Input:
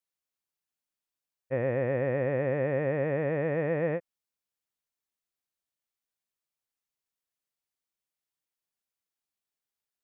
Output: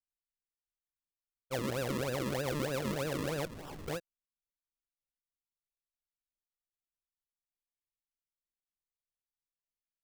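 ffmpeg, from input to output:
ffmpeg -i in.wav -filter_complex "[0:a]acrusher=samples=40:mix=1:aa=0.000001:lfo=1:lforange=40:lforate=3.2,asettb=1/sr,asplit=3[link_01][link_02][link_03];[link_01]atrim=end=3.454[link_04];[link_02]atrim=start=3.45:end=3.88,asetpts=PTS-STARTPTS,afade=type=in:duration=0.004:curve=qsin,afade=type=out:start_time=0.426:duration=0.004:curve=qsin,aeval=exprs='0.0188*(abs(mod(val(0)/0.0188+3,4)-2)-1)':channel_layout=same[link_05];[link_03]atrim=start=3.876[link_06];[link_04][link_05]acrossfade=duration=0.004:curve1=hsin:curve2=qsin[link_07];[link_07][link_06]acrossfade=duration=0.004:curve1=qsin:curve2=hsin,anlmdn=0.000251,volume=-6.5dB" out.wav

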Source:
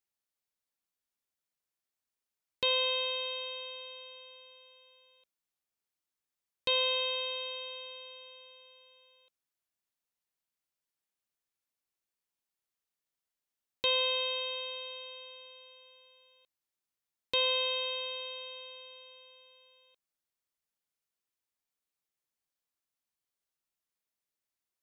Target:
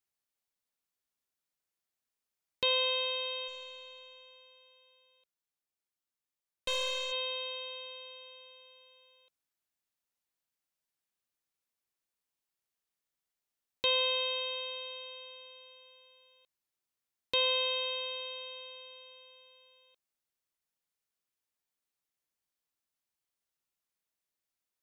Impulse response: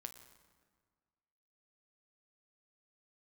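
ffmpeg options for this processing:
-filter_complex "[0:a]asplit=3[link_01][link_02][link_03];[link_01]afade=type=out:start_time=3.47:duration=0.02[link_04];[link_02]aeval=exprs='(tanh(20*val(0)+0.7)-tanh(0.7))/20':channel_layout=same,afade=type=in:start_time=3.47:duration=0.02,afade=type=out:start_time=7.11:duration=0.02[link_05];[link_03]afade=type=in:start_time=7.11:duration=0.02[link_06];[link_04][link_05][link_06]amix=inputs=3:normalize=0"

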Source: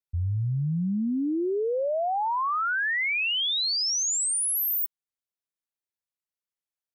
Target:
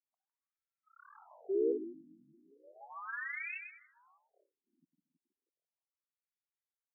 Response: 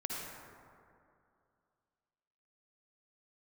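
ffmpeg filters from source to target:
-filter_complex "[0:a]highshelf=frequency=6600:gain=-4,asplit=2[link_01][link_02];[link_02]aecho=0:1:155|310|465|620:0.631|0.196|0.0606|0.0188[link_03];[link_01][link_03]amix=inputs=2:normalize=0,aeval=exprs='0.133*(cos(1*acos(clip(val(0)/0.133,-1,1)))-cos(1*PI/2))+0.00376*(cos(2*acos(clip(val(0)/0.133,-1,1)))-cos(2*PI/2))+0.0188*(cos(3*acos(clip(val(0)/0.133,-1,1)))-cos(3*PI/2))+0.0133*(cos(5*acos(clip(val(0)/0.133,-1,1)))-cos(5*PI/2))+0.00841*(cos(7*acos(clip(val(0)/0.133,-1,1)))-cos(7*PI/2))':channel_layout=same,asplit=2[link_04][link_05];[link_05]adelay=322,lowpass=frequency=2100:poles=1,volume=-10dB,asplit=2[link_06][link_07];[link_07]adelay=322,lowpass=frequency=2100:poles=1,volume=0.18,asplit=2[link_08][link_09];[link_09]adelay=322,lowpass=frequency=2100:poles=1,volume=0.18[link_10];[link_06][link_08][link_10]amix=inputs=3:normalize=0[link_11];[link_04][link_11]amix=inputs=2:normalize=0,afftfilt=real='re*between(b*sr/1024,220*pow(1900/220,0.5+0.5*sin(2*PI*0.35*pts/sr))/1.41,220*pow(1900/220,0.5+0.5*sin(2*PI*0.35*pts/sr))*1.41)':imag='im*between(b*sr/1024,220*pow(1900/220,0.5+0.5*sin(2*PI*0.35*pts/sr))/1.41,220*pow(1900/220,0.5+0.5*sin(2*PI*0.35*pts/sr))*1.41)':win_size=1024:overlap=0.75,volume=-3.5dB"

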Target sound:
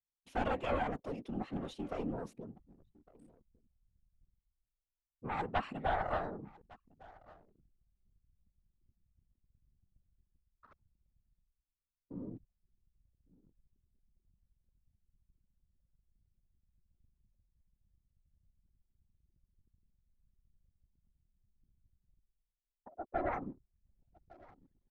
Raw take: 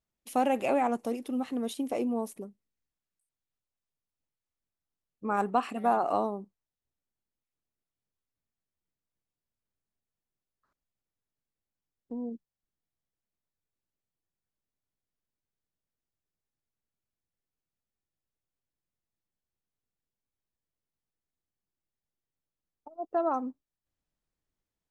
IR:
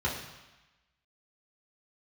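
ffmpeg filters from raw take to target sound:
-af "areverse,acompressor=mode=upward:threshold=-35dB:ratio=2.5,areverse,aeval=exprs='0.237*(cos(1*acos(clip(val(0)/0.237,-1,1)))-cos(1*PI/2))+0.0596*(cos(4*acos(clip(val(0)/0.237,-1,1)))-cos(4*PI/2))':channel_layout=same,afftfilt=real='hypot(re,im)*cos(2*PI*random(0))':imag='hypot(re,im)*sin(2*PI*random(1))':win_size=512:overlap=0.75,aecho=1:1:1156:0.0708,anlmdn=0.0000631,lowpass=4400,volume=-1dB"

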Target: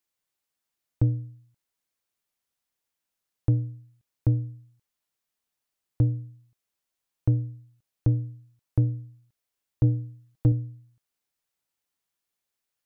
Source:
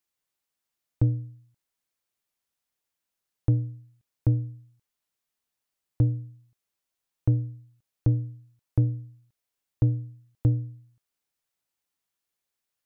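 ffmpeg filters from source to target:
ffmpeg -i in.wav -filter_complex "[0:a]asettb=1/sr,asplit=3[link_01][link_02][link_03];[link_01]atrim=end=9.834[link_04];[link_02]atrim=start=9.83:end=10.52,asetpts=PTS-STARTPTS,afade=type=in:duration=0.004:curve=qsin,afade=type=out:start_time=0.686:duration=0.004:curve=qsin,aecho=1:1:6.3:0.56,atrim=end_sample=30429[link_05];[link_03]atrim=start=10.516[link_06];[link_04][link_05]acrossfade=duration=0.004:curve1=hsin:curve2=qsin[link_07];[link_07][link_06]acrossfade=duration=0.004:curve1=qsin:curve2=hsin" out.wav

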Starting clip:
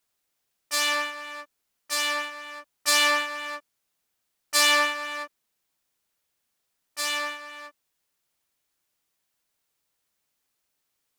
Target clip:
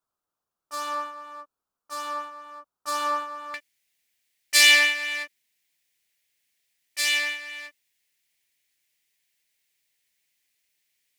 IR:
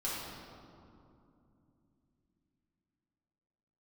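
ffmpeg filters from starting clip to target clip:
-af "asetnsamples=nb_out_samples=441:pad=0,asendcmd='3.54 highshelf g 7.5',highshelf=frequency=1600:width_type=q:width=3:gain=-8,volume=-4.5dB"

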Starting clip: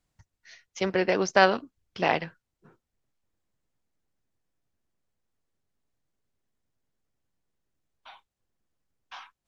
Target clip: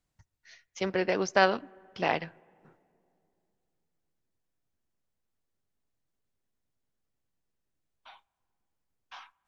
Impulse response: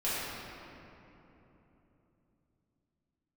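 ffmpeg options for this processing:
-filter_complex "[0:a]asplit=2[link_01][link_02];[1:a]atrim=start_sample=2205,asetrate=61740,aresample=44100,lowpass=2300[link_03];[link_02][link_03]afir=irnorm=-1:irlink=0,volume=-32dB[link_04];[link_01][link_04]amix=inputs=2:normalize=0,volume=-3.5dB"

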